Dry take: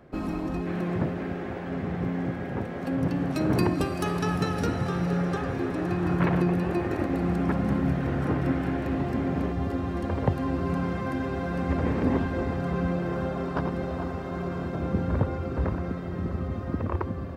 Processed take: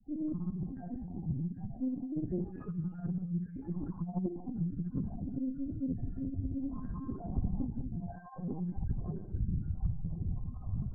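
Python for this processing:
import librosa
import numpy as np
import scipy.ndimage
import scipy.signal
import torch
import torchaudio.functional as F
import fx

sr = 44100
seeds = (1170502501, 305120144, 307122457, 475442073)

p1 = fx.spec_dropout(x, sr, seeds[0], share_pct=59)
p2 = scipy.signal.sosfilt(scipy.signal.butter(2, 1200.0, 'lowpass', fs=sr, output='sos'), p1)
p3 = fx.low_shelf(p2, sr, hz=370.0, db=6.5)
p4 = fx.rider(p3, sr, range_db=4, speed_s=2.0)
p5 = fx.stretch_grains(p4, sr, factor=0.63, grain_ms=87.0)
p6 = fx.vibrato(p5, sr, rate_hz=0.62, depth_cents=11.0)
p7 = fx.chorus_voices(p6, sr, voices=6, hz=1.0, base_ms=14, depth_ms=3.9, mix_pct=35)
p8 = fx.spec_topn(p7, sr, count=4)
p9 = p8 + fx.room_early_taps(p8, sr, ms=(19, 61, 77), db=(-8.0, -5.5, -7.0), dry=0)
p10 = fx.rev_gated(p9, sr, seeds[1], gate_ms=210, shape='rising', drr_db=9.0)
p11 = fx.lpc_vocoder(p10, sr, seeds[2], excitation='pitch_kept', order=16)
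p12 = fx.doppler_dist(p11, sr, depth_ms=0.44)
y = p12 * librosa.db_to_amplitude(-6.5)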